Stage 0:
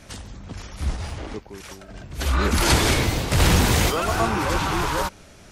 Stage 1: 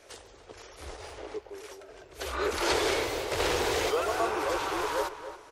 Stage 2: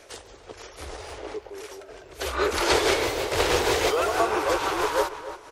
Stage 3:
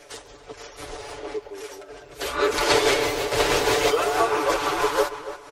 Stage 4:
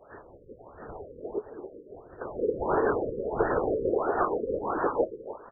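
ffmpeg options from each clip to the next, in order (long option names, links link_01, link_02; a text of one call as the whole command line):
ffmpeg -i in.wav -filter_complex "[0:a]acrossover=split=6800[link_01][link_02];[link_02]acompressor=threshold=-36dB:ratio=4:attack=1:release=60[link_03];[link_01][link_03]amix=inputs=2:normalize=0,lowshelf=frequency=290:width_type=q:width=3:gain=-12.5,asplit=2[link_04][link_05];[link_05]adelay=278,lowpass=frequency=3200:poles=1,volume=-11.5dB,asplit=2[link_06][link_07];[link_07]adelay=278,lowpass=frequency=3200:poles=1,volume=0.38,asplit=2[link_08][link_09];[link_09]adelay=278,lowpass=frequency=3200:poles=1,volume=0.38,asplit=2[link_10][link_11];[link_11]adelay=278,lowpass=frequency=3200:poles=1,volume=0.38[link_12];[link_04][link_06][link_08][link_10][link_12]amix=inputs=5:normalize=0,volume=-8dB" out.wav
ffmpeg -i in.wav -af "tremolo=f=6.2:d=0.4,volume=7dB" out.wav
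ffmpeg -i in.wav -af "aecho=1:1:6.9:0.77" out.wav
ffmpeg -i in.wav -filter_complex "[0:a]asplit=2[link_01][link_02];[link_02]adelay=21,volume=-3dB[link_03];[link_01][link_03]amix=inputs=2:normalize=0,afftfilt=real='hypot(re,im)*cos(2*PI*random(0))':imag='hypot(re,im)*sin(2*PI*random(1))':win_size=512:overlap=0.75,afftfilt=real='re*lt(b*sr/1024,540*pow(1900/540,0.5+0.5*sin(2*PI*1.5*pts/sr)))':imag='im*lt(b*sr/1024,540*pow(1900/540,0.5+0.5*sin(2*PI*1.5*pts/sr)))':win_size=1024:overlap=0.75" out.wav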